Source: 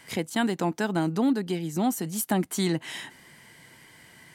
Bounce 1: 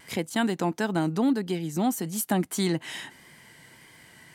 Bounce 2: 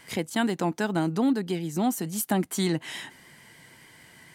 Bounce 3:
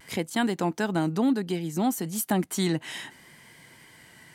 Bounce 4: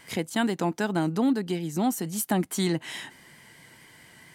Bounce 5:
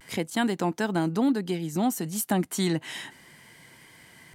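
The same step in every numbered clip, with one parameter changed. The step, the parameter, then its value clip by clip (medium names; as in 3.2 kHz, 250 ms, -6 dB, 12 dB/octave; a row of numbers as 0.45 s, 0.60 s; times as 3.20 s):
vibrato, rate: 1.6 Hz, 6.8 Hz, 0.64 Hz, 4.5 Hz, 0.32 Hz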